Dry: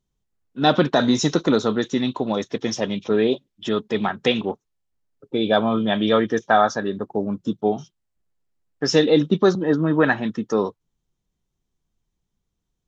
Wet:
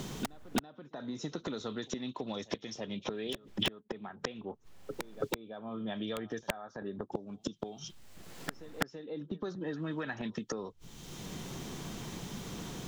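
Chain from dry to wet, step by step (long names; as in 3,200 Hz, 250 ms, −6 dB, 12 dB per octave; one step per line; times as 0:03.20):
downward compressor 5 to 1, threshold −20 dBFS, peak gain reduction 9 dB
high-shelf EQ 3,900 Hz −10 dB
gate with flip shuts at −24 dBFS, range −35 dB
wrap-around overflow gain 28 dB
backwards echo 332 ms −23.5 dB
multiband upward and downward compressor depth 100%
level +17 dB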